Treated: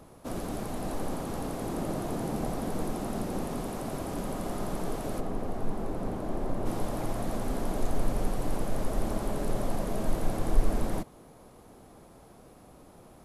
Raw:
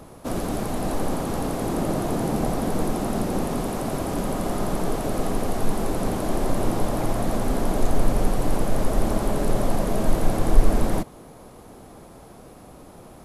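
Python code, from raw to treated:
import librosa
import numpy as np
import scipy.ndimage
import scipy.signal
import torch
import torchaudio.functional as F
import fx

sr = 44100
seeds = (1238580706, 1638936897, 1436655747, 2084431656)

y = fx.high_shelf(x, sr, hz=2400.0, db=-11.5, at=(5.19, 6.65), fade=0.02)
y = y * librosa.db_to_amplitude(-8.0)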